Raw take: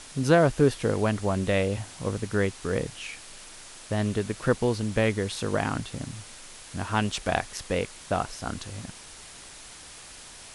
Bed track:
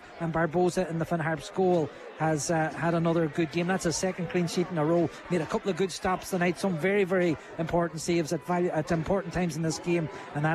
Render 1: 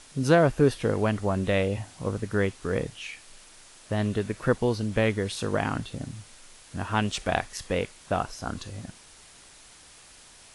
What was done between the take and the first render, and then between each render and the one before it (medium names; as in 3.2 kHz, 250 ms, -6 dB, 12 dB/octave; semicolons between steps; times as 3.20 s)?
noise print and reduce 6 dB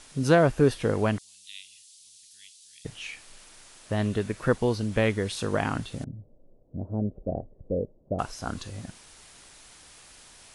1.18–2.85 s: inverse Chebyshev high-pass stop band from 1.4 kHz, stop band 50 dB; 6.04–8.19 s: Chebyshev low-pass 590 Hz, order 4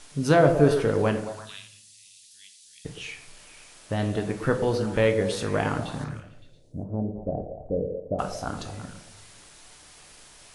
repeats whose band climbs or falls 113 ms, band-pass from 430 Hz, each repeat 0.7 oct, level -6 dB; simulated room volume 110 m³, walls mixed, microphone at 0.37 m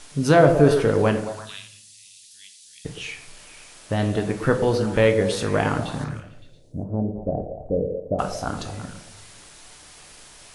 trim +4 dB; peak limiter -3 dBFS, peak gain reduction 1.5 dB